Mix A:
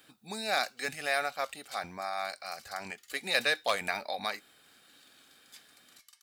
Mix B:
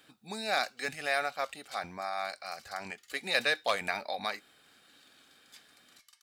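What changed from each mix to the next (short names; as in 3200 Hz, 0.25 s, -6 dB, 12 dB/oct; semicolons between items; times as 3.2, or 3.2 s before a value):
master: add high shelf 8600 Hz -7 dB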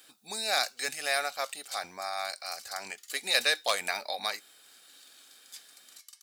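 master: add tone controls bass -12 dB, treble +12 dB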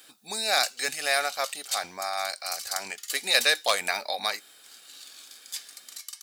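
speech +4.0 dB; background +11.5 dB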